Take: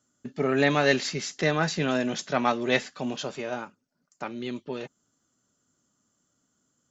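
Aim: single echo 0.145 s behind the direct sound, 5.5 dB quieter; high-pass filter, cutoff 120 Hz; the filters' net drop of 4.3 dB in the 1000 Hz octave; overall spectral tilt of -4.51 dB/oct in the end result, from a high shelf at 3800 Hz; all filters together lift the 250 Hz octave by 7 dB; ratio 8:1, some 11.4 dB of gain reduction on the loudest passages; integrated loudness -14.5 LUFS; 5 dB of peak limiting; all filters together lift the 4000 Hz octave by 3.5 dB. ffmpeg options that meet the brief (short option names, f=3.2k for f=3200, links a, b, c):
-af "highpass=120,equalizer=f=250:t=o:g=8.5,equalizer=f=1k:t=o:g=-7,highshelf=f=3.8k:g=-3.5,equalizer=f=4k:t=o:g=6.5,acompressor=threshold=-27dB:ratio=8,alimiter=limit=-23.5dB:level=0:latency=1,aecho=1:1:145:0.531,volume=18dB"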